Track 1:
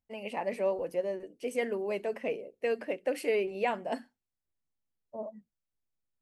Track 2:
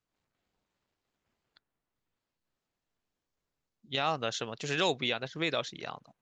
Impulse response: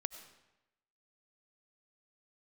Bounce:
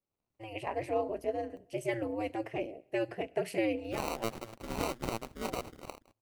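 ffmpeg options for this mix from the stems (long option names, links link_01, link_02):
-filter_complex "[0:a]adelay=300,volume=-0.5dB,asplit=2[link_01][link_02];[link_02]volume=-13.5dB[link_03];[1:a]lowpass=frequency=5000:width=0.5412,lowpass=frequency=5000:width=1.3066,acrusher=samples=26:mix=1:aa=0.000001,volume=-2.5dB,asplit=2[link_04][link_05];[link_05]apad=whole_len=287481[link_06];[link_01][link_06]sidechaincompress=threshold=-46dB:ratio=8:attack=16:release=414[link_07];[2:a]atrim=start_sample=2205[link_08];[link_03][link_08]afir=irnorm=-1:irlink=0[link_09];[link_07][link_04][link_09]amix=inputs=3:normalize=0,aeval=exprs='val(0)*sin(2*PI*110*n/s)':channel_layout=same"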